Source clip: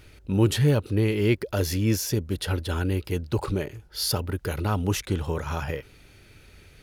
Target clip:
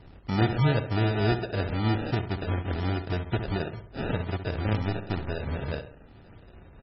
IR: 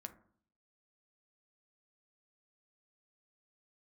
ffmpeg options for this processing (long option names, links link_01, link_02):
-filter_complex "[0:a]asettb=1/sr,asplit=3[link_01][link_02][link_03];[link_01]atrim=end=4.794[link_04];[link_02]atrim=start=4.79:end=5.39,asetpts=PTS-STARTPTS,afade=type=in:duration=0.004:curve=qsin,afade=type=out:start_time=0.596:duration=0.004:curve=qsin,aeval=exprs='if(lt(val(0),0),0.447*val(0),val(0))':channel_layout=same[link_05];[link_03]atrim=start=5.386[link_06];[link_04][link_05]acrossfade=duration=0.004:curve1=hsin:curve2=qsin[link_07];[link_07][link_06]acrossfade=duration=0.004:curve1=qsin:curve2=hsin,equalizer=frequency=130:width=1.5:gain=2,asplit=2[link_08][link_09];[link_09]acompressor=threshold=-32dB:ratio=6,volume=0dB[link_10];[link_08][link_10]amix=inputs=2:normalize=0,acrusher=samples=41:mix=1:aa=0.000001,asplit=2[link_11][link_12];[link_12]adelay=66,lowpass=frequency=3100:poles=1,volume=-9.5dB,asplit=2[link_13][link_14];[link_14]adelay=66,lowpass=frequency=3100:poles=1,volume=0.47,asplit=2[link_15][link_16];[link_16]adelay=66,lowpass=frequency=3100:poles=1,volume=0.47,asplit=2[link_17][link_18];[link_18]adelay=66,lowpass=frequency=3100:poles=1,volume=0.47,asplit=2[link_19][link_20];[link_20]adelay=66,lowpass=frequency=3100:poles=1,volume=0.47[link_21];[link_11][link_13][link_15][link_17][link_19][link_21]amix=inputs=6:normalize=0,asplit=2[link_22][link_23];[1:a]atrim=start_sample=2205,asetrate=83790,aresample=44100[link_24];[link_23][link_24]afir=irnorm=-1:irlink=0,volume=-11dB[link_25];[link_22][link_25]amix=inputs=2:normalize=0,volume=-6dB" -ar 24000 -c:a libmp3lame -b:a 16k